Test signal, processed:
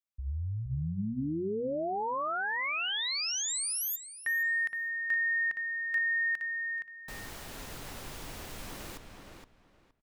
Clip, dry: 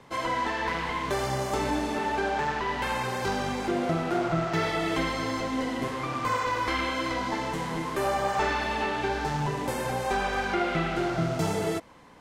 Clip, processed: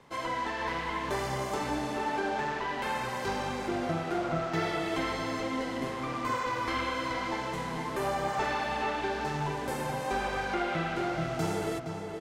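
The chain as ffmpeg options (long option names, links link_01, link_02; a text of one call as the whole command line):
ffmpeg -i in.wav -filter_complex "[0:a]bandreject=frequency=60:width_type=h:width=6,bandreject=frequency=120:width_type=h:width=6,bandreject=frequency=180:width_type=h:width=6,bandreject=frequency=240:width_type=h:width=6,asplit=2[link_01][link_02];[link_02]adelay=468,lowpass=frequency=3600:poles=1,volume=-5.5dB,asplit=2[link_03][link_04];[link_04]adelay=468,lowpass=frequency=3600:poles=1,volume=0.21,asplit=2[link_05][link_06];[link_06]adelay=468,lowpass=frequency=3600:poles=1,volume=0.21[link_07];[link_01][link_03][link_05][link_07]amix=inputs=4:normalize=0,volume=-4.5dB" out.wav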